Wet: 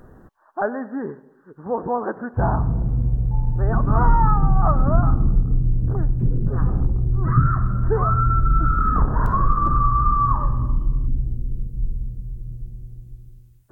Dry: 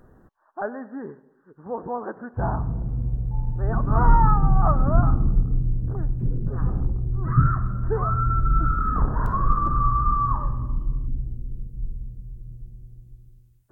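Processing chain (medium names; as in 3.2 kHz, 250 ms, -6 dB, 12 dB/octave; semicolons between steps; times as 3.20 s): compression 2:1, threshold -22 dBFS, peak gain reduction 7.5 dB; trim +6.5 dB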